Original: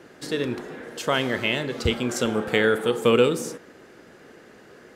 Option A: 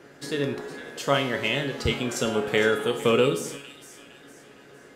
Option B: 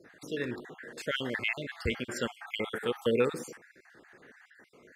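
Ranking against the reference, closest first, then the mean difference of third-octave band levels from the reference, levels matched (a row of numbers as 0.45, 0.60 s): A, B; 2.5, 5.5 dB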